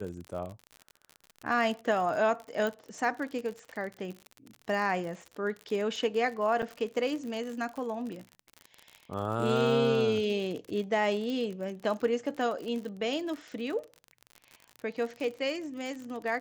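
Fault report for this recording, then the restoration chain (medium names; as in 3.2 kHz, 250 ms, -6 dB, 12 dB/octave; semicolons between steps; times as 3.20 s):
crackle 56 per s -36 dBFS
2.67 s: pop -20 dBFS
6.62–6.63 s: dropout 7 ms
11.30 s: pop -25 dBFS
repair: de-click; interpolate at 6.62 s, 7 ms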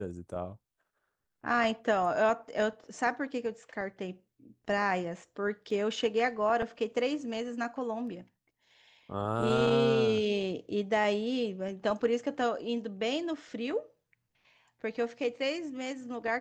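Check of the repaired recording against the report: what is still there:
nothing left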